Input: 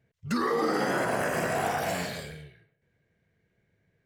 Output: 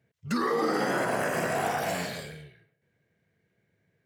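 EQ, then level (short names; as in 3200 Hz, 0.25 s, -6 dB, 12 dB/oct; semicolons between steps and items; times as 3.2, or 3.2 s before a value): HPF 97 Hz; 0.0 dB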